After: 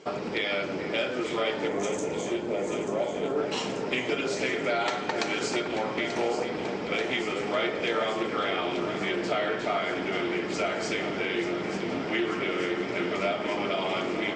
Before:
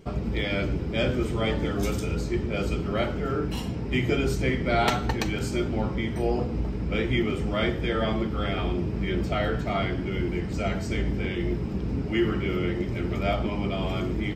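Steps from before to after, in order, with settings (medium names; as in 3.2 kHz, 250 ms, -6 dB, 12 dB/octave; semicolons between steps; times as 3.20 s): Chebyshev low-pass 7.6 kHz, order 5; time-frequency box 1.68–3.39 s, 1.1–5.9 kHz -14 dB; high-pass 460 Hz 12 dB/octave; compression, threshold -34 dBFS, peak gain reduction 13.5 dB; echo whose repeats swap between lows and highs 443 ms, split 2.2 kHz, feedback 86%, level -8.5 dB; reverberation RT60 1.0 s, pre-delay 5 ms, DRR 10 dB; loudspeaker Doppler distortion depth 0.13 ms; trim +8 dB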